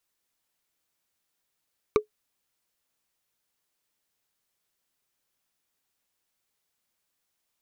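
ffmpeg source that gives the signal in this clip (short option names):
-f lavfi -i "aevalsrc='0.251*pow(10,-3*t/0.11)*sin(2*PI*425*t)+0.15*pow(10,-3*t/0.033)*sin(2*PI*1171.7*t)+0.0891*pow(10,-3*t/0.015)*sin(2*PI*2296.7*t)+0.0531*pow(10,-3*t/0.008)*sin(2*PI*3796.5*t)+0.0316*pow(10,-3*t/0.005)*sin(2*PI*5669.5*t)':d=0.45:s=44100"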